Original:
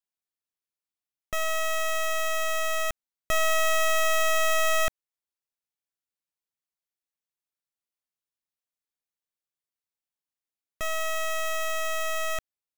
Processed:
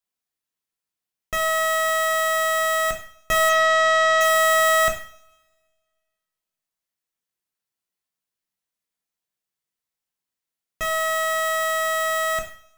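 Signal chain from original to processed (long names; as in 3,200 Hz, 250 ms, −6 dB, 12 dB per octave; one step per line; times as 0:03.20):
0:03.49–0:04.21: low-pass filter 6,300 Hz 24 dB per octave
coupled-rooms reverb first 0.48 s, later 1.7 s, from −26 dB, DRR 1 dB
level +3 dB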